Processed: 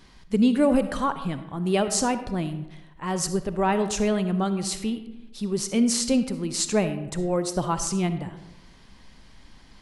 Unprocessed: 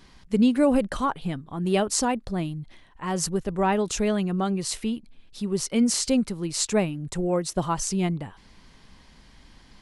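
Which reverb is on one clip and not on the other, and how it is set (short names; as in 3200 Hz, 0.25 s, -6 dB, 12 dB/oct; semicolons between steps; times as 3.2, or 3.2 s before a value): digital reverb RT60 1 s, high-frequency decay 0.5×, pre-delay 20 ms, DRR 10 dB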